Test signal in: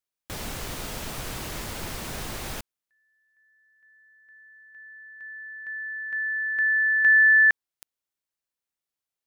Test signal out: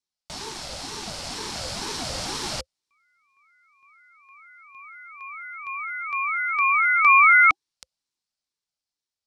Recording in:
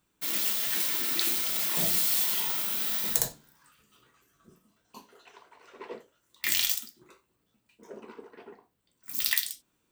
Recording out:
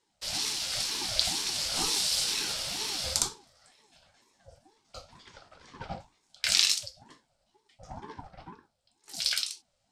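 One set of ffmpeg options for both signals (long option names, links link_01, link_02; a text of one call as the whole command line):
ffmpeg -i in.wav -af "dynaudnorm=framelen=250:gausssize=13:maxgain=6dB,highpass=frequency=210:width=0.5412,highpass=frequency=210:width=1.3066,equalizer=frequency=230:width_type=q:width=4:gain=8,equalizer=frequency=710:width_type=q:width=4:gain=-5,equalizer=frequency=1400:width_type=q:width=4:gain=-7,equalizer=frequency=2100:width_type=q:width=4:gain=-6,equalizer=frequency=4800:width_type=q:width=4:gain=10,lowpass=frequency=9200:width=0.5412,lowpass=frequency=9200:width=1.3066,aeval=exprs='val(0)*sin(2*PI*480*n/s+480*0.4/2.1*sin(2*PI*2.1*n/s))':channel_layout=same,volume=3dB" out.wav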